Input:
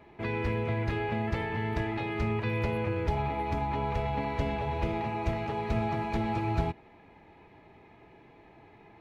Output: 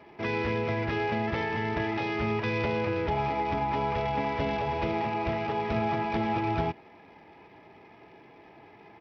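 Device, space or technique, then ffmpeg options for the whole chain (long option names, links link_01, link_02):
Bluetooth headset: -af "highpass=frequency=200:poles=1,aresample=8000,aresample=44100,volume=4dB" -ar 44100 -c:a sbc -b:a 64k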